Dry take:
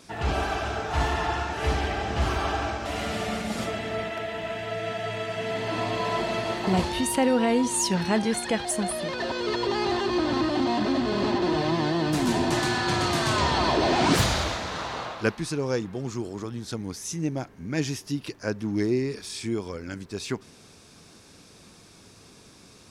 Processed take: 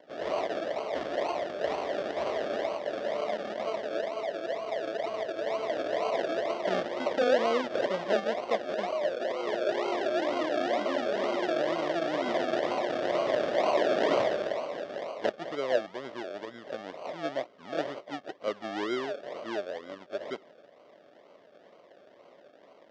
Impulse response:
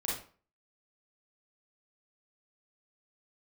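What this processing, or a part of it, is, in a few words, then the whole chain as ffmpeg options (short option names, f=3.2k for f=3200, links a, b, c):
circuit-bent sampling toy: -af "acrusher=samples=35:mix=1:aa=0.000001:lfo=1:lforange=21:lforate=2.1,highpass=510,equalizer=f=590:t=q:w=4:g=9,equalizer=f=860:t=q:w=4:g=-7,equalizer=f=1.4k:t=q:w=4:g=-6,equalizer=f=2.5k:t=q:w=4:g=-9,equalizer=f=4.1k:t=q:w=4:g=-7,lowpass=f=4.3k:w=0.5412,lowpass=f=4.3k:w=1.3066"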